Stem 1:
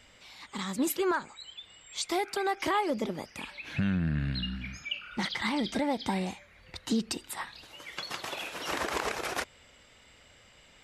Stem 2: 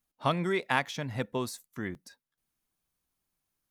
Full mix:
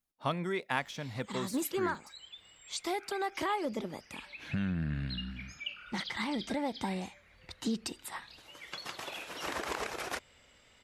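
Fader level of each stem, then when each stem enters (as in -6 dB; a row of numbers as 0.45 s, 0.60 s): -4.5 dB, -5.0 dB; 0.75 s, 0.00 s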